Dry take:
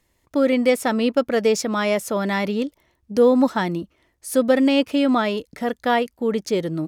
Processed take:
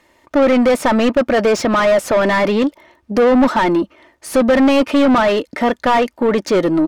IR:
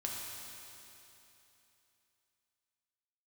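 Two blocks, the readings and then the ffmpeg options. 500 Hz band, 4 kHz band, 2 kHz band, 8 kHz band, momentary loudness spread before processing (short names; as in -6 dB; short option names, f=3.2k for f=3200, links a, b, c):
+6.0 dB, +4.0 dB, +7.0 dB, +2.0 dB, 10 LU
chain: -filter_complex "[0:a]aecho=1:1:3.3:0.35,asplit=2[a][b];[b]highpass=f=720:p=1,volume=27dB,asoftclip=type=tanh:threshold=-4.5dB[c];[a][c]amix=inputs=2:normalize=0,lowpass=f=1.3k:p=1,volume=-6dB"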